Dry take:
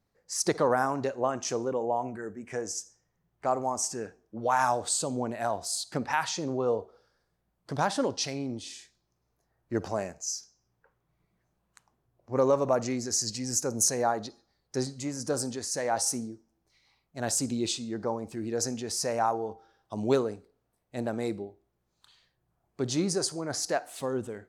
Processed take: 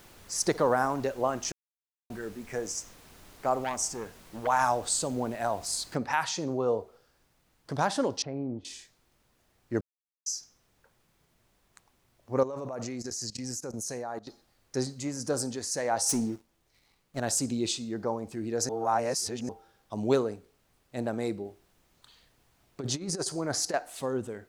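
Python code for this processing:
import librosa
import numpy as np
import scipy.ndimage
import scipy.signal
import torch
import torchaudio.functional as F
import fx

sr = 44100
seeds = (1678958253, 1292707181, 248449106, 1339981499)

y = fx.transformer_sat(x, sr, knee_hz=1500.0, at=(3.64, 4.47))
y = fx.noise_floor_step(y, sr, seeds[0], at_s=5.95, before_db=-53, after_db=-70, tilt_db=3.0)
y = fx.lowpass(y, sr, hz=1000.0, slope=12, at=(8.22, 8.65))
y = fx.level_steps(y, sr, step_db=18, at=(12.43, 14.27))
y = fx.leveller(y, sr, passes=2, at=(16.09, 17.2))
y = fx.over_compress(y, sr, threshold_db=-31.0, ratio=-0.5, at=(21.45, 23.74))
y = fx.edit(y, sr, fx.silence(start_s=1.52, length_s=0.58),
    fx.silence(start_s=9.81, length_s=0.45),
    fx.reverse_span(start_s=18.69, length_s=0.8), tone=tone)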